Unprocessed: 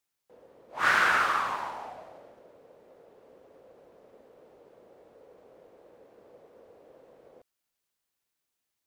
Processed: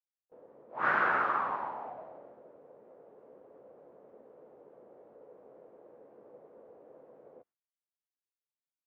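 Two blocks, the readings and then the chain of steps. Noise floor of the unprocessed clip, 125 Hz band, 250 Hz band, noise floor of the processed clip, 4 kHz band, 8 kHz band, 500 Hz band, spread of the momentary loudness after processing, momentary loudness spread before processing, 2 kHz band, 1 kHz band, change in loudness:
-84 dBFS, -2.5 dB, 0.0 dB, under -85 dBFS, under -15 dB, under -30 dB, 0.0 dB, 20 LU, 21 LU, -6.0 dB, -2.5 dB, -5.0 dB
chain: high-pass 130 Hz 12 dB/octave; gate with hold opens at -50 dBFS; low-pass 1.2 kHz 12 dB/octave; doubling 14 ms -12 dB

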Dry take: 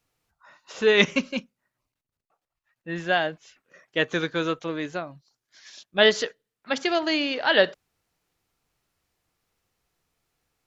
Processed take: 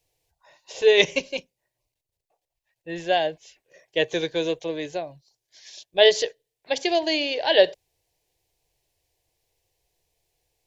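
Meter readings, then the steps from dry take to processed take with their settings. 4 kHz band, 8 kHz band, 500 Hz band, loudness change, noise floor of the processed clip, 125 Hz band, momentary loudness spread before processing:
+2.0 dB, no reading, +3.5 dB, +1.5 dB, -84 dBFS, -5.5 dB, 14 LU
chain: static phaser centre 540 Hz, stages 4; trim +4 dB

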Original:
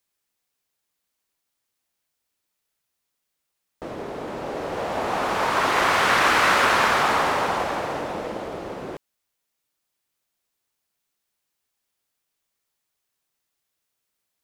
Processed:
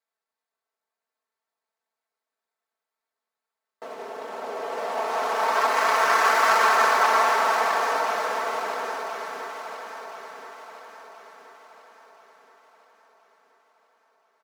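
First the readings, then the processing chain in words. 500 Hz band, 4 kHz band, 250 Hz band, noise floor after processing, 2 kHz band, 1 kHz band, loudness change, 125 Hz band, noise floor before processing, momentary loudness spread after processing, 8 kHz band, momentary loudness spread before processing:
-0.5 dB, -4.0 dB, -11.0 dB, under -85 dBFS, -1.5 dB, +1.5 dB, -1.0 dB, under -15 dB, -80 dBFS, 20 LU, -0.5 dB, 17 LU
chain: median filter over 15 samples; high-pass 560 Hz 12 dB/octave; comb 4.5 ms, depth 91%; on a send: echo whose repeats swap between lows and highs 513 ms, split 1.4 kHz, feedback 67%, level -2.5 dB; on the sum: trim -2 dB

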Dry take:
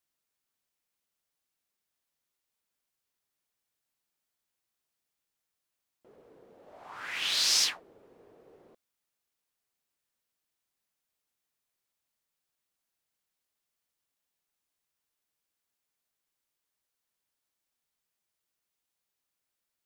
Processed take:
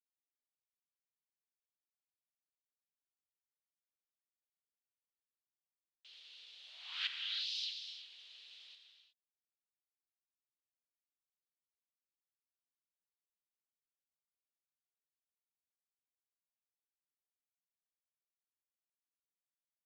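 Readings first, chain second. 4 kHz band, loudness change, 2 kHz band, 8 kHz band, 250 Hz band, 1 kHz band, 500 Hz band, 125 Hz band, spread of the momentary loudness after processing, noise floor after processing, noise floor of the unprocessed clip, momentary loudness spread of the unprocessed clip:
-9.5 dB, -13.5 dB, -10.5 dB, -27.0 dB, under -35 dB, -17.0 dB, under -25 dB, no reading, 19 LU, under -85 dBFS, under -85 dBFS, 15 LU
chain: octave divider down 2 oct, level -1 dB; in parallel at -2.5 dB: compression, threshold -36 dBFS, peak gain reduction 13.5 dB; on the sum: inverted gate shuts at -27 dBFS, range -25 dB; word length cut 10-bit, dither none; Butterworth band-pass 3.5 kHz, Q 2.4; gated-style reverb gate 390 ms flat, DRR 4 dB; trim +13.5 dB

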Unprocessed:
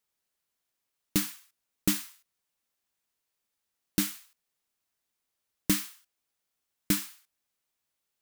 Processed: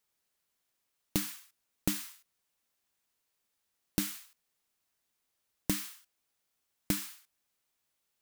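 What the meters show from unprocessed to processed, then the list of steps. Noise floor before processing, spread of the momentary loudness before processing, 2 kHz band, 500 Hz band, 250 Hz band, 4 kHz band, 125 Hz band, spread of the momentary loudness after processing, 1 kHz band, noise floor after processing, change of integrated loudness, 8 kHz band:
-84 dBFS, 16 LU, -5.0 dB, -2.0 dB, -5.0 dB, -5.0 dB, -3.0 dB, 13 LU, -2.5 dB, -82 dBFS, -5.0 dB, -5.0 dB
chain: compression 6:1, threshold -29 dBFS, peak gain reduction 9.5 dB; trim +2 dB

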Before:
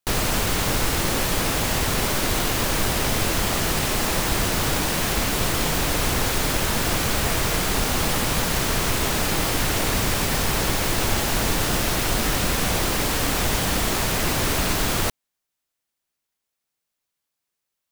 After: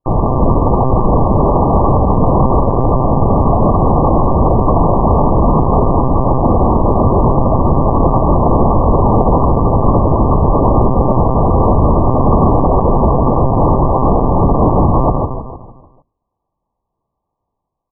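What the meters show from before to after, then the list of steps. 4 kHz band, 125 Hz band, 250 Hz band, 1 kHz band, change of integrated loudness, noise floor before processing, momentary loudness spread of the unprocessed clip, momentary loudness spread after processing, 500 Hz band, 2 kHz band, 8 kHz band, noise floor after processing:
under -40 dB, +14.5 dB, +14.0 dB, +13.5 dB, +9.0 dB, -82 dBFS, 0 LU, 2 LU, +14.0 dB, under -35 dB, under -40 dB, -76 dBFS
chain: rattle on loud lows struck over -29 dBFS, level -13 dBFS; hum notches 50/100/150/200/250 Hz; level rider gain up to 6 dB; on a send: feedback delay 153 ms, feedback 47%, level -7 dB; on the sum: monotone LPC vocoder at 8 kHz 130 Hz; brick-wall FIR low-pass 1.2 kHz; loudness maximiser +13 dB; trim -1 dB

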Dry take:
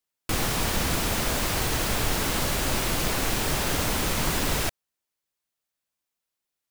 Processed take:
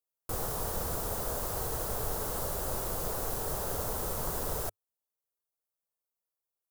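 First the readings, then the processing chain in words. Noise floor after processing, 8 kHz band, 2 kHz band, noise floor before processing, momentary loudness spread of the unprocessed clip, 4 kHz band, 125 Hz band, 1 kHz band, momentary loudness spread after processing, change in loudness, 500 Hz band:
under -85 dBFS, -9.0 dB, -17.0 dB, under -85 dBFS, 1 LU, -17.0 dB, -9.5 dB, -8.0 dB, 1 LU, -8.0 dB, -5.0 dB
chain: FFT filter 100 Hz 0 dB, 290 Hz -7 dB, 440 Hz +5 dB, 1.3 kHz -1 dB, 2.3 kHz -15 dB, 13 kHz +5 dB; trim -8.5 dB

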